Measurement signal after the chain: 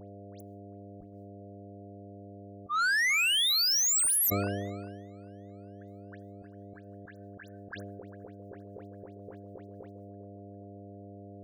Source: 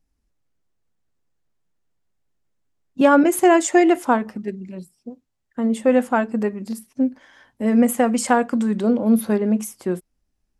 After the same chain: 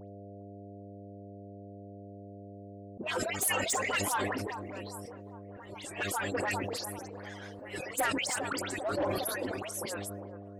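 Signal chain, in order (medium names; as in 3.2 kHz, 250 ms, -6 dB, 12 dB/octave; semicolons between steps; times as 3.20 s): harmonic-percussive separation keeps percussive; gate with hold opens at -53 dBFS; bass shelf 180 Hz -7 dB; mains buzz 100 Hz, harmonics 7, -54 dBFS -2 dB/octave; in parallel at +2 dB: compression, threshold -32 dBFS; on the sum: slow attack 149 ms; phase dispersion highs, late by 98 ms, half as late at 2.5 kHz; saturation -25 dBFS; feedback echo behind a band-pass 401 ms, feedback 54%, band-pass 610 Hz, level -10.5 dB; decay stretcher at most 26 dB/s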